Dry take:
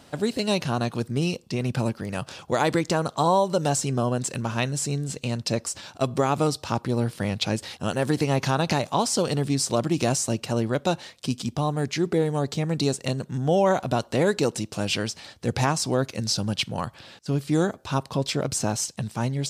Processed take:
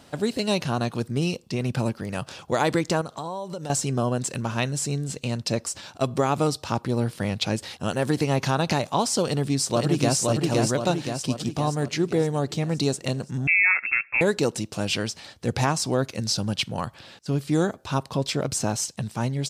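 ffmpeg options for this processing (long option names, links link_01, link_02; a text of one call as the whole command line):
ffmpeg -i in.wav -filter_complex "[0:a]asettb=1/sr,asplit=3[link_01][link_02][link_03];[link_01]atrim=end=3.014[link_04];[link_02]atrim=start=3.01:end=3.7,asetpts=PTS-STARTPTS,afade=type=in:duration=0.004:curve=qsin,afade=type=out:start_time=0.686:duration=0.004:curve=qsin,acompressor=threshold=-31dB:ratio=4:attack=3.2:release=140:knee=1:detection=peak[link_05];[link_03]atrim=start=3.696[link_06];[link_04][link_05]acrossfade=duration=0.004:curve1=hsin:curve2=qsin[link_07];[link_07][link_06]acrossfade=duration=0.004:curve1=qsin:curve2=hsin,asplit=2[link_08][link_09];[link_09]afade=type=in:start_time=9.23:duration=0.01,afade=type=out:start_time=10.18:duration=0.01,aecho=0:1:520|1040|1560|2080|2600|3120|3640|4160:0.794328|0.436881|0.240284|0.132156|0.072686|0.0399773|0.0219875|0.0120931[link_10];[link_08][link_10]amix=inputs=2:normalize=0,asettb=1/sr,asplit=3[link_11][link_12][link_13];[link_11]atrim=end=13.474[link_14];[link_12]atrim=start=13.47:end=14.21,asetpts=PTS-STARTPTS,afade=type=in:duration=0.004:curve=qsin,afade=type=out:start_time=0.736:duration=0.004:curve=qsin,lowpass=frequency=2400:width_type=q:width=0.5098,lowpass=frequency=2400:width_type=q:width=0.6013,lowpass=frequency=2400:width_type=q:width=0.9,lowpass=frequency=2400:width_type=q:width=2.563,afreqshift=-2800[link_15];[link_13]atrim=start=14.206[link_16];[link_14][link_15]acrossfade=duration=0.004:curve1=hsin:curve2=qsin[link_17];[link_17][link_16]acrossfade=duration=0.004:curve1=qsin:curve2=hsin" out.wav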